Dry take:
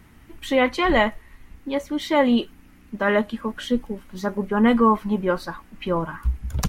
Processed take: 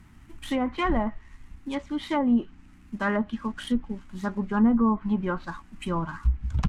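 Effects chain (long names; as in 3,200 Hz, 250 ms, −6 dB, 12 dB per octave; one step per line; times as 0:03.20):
running median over 9 samples
treble cut that deepens with the level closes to 720 Hz, closed at −13.5 dBFS
octave-band graphic EQ 500/2,000/8,000 Hz −12/−3/+5 dB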